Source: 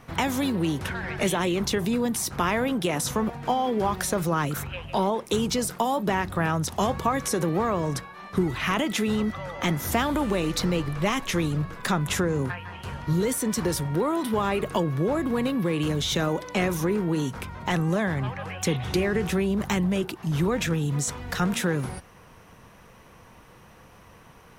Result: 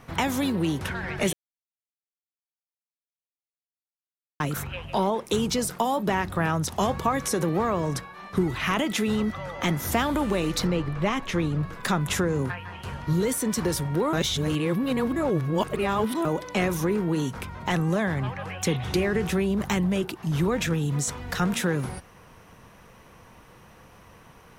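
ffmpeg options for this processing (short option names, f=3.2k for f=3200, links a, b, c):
-filter_complex "[0:a]asettb=1/sr,asplit=3[a][b][c];[a]atrim=end=10.674[d];[b]atrim=start=10.67:end=11.63,asetpts=PTS-STARTPTS,afade=t=in:d=0.004:c=qsin,afade=t=out:st=0.956:d=0.004:c=qsin,lowpass=f=2.8k:p=1[e];[c]atrim=start=11.626[f];[d][e]acrossfade=d=0.004:c1=hsin:c2=qsin[g];[g][f]acrossfade=d=0.004:c1=qsin:c2=hsin,asplit=5[h][i][j][k][l];[h]atrim=end=1.33,asetpts=PTS-STARTPTS,afade=t=out:st=1.326:d=0.004:c=hsin[m];[i]atrim=start=1.33:end=4.4,asetpts=PTS-STARTPTS,volume=0[n];[j]atrim=start=4.4:end=14.132,asetpts=PTS-STARTPTS,afade=t=in:d=0.004:c=hsin[o];[k]atrim=start=14.128:end=16.252,asetpts=PTS-STARTPTS,areverse[p];[l]atrim=start=16.248[q];[m][n][o]concat=n=3:v=0:a=1[r];[r][p]acrossfade=d=0.004:c1=hsin:c2=hsin[s];[s][q]acrossfade=d=0.004:c1=hsin:c2=hsin"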